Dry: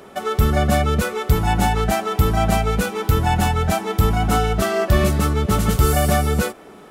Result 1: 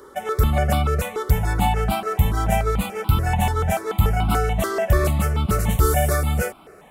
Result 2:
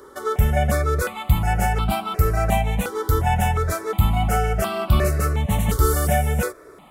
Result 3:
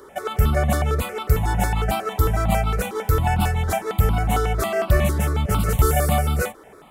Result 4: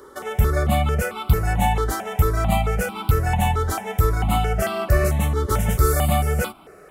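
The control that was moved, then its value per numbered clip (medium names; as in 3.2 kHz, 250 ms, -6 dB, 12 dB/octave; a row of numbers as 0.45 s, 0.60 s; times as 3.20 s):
stepped phaser, rate: 6.9 Hz, 2.8 Hz, 11 Hz, 4.5 Hz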